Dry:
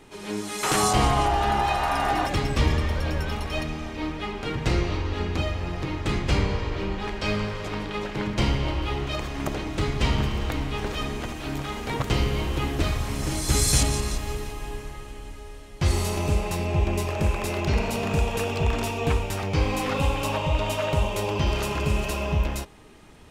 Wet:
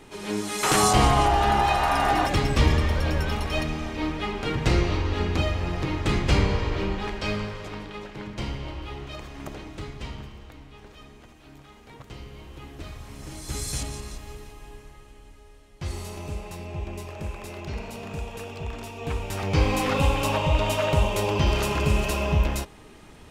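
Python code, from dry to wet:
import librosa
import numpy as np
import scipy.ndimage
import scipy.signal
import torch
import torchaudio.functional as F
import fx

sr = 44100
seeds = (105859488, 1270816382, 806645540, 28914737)

y = fx.gain(x, sr, db=fx.line((6.8, 2.0), (8.13, -8.5), (9.63, -8.5), (10.5, -18.0), (12.23, -18.0), (13.55, -10.0), (18.92, -10.0), (19.54, 2.0)))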